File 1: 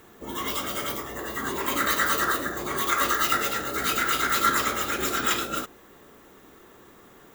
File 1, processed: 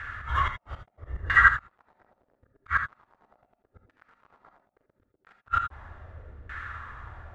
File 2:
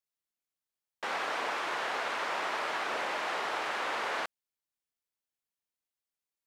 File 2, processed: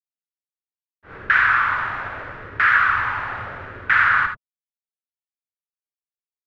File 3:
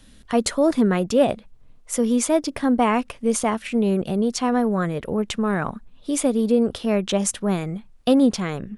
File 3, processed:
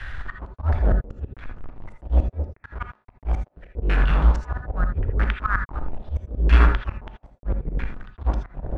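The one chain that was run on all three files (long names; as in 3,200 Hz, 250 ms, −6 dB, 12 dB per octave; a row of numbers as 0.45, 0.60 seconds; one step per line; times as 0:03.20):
sub-octave generator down 2 octaves, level −5 dB
elliptic band-stop filter 100–1,500 Hz, stop band 80 dB
in parallel at +0.5 dB: downward compressor 6 to 1, threshold −38 dBFS
on the sum: gate with flip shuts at −17 dBFS, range −40 dB
log-companded quantiser 4 bits
volume swells 125 ms
auto-filter low-pass saw down 0.77 Hz 400–1,700 Hz
reverb whose tail is shaped and stops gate 100 ms rising, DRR 6 dB
normalise the peak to −3 dBFS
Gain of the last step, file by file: +10.0, +13.0, +12.5 decibels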